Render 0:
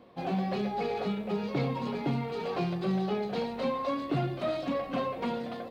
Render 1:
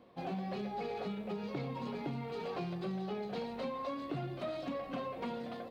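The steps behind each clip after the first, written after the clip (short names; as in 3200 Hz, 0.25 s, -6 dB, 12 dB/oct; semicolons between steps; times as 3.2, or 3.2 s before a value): compressor, threshold -30 dBFS, peak gain reduction 5.5 dB; gain -5 dB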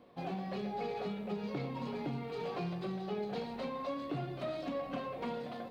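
reverb RT60 0.70 s, pre-delay 7 ms, DRR 9 dB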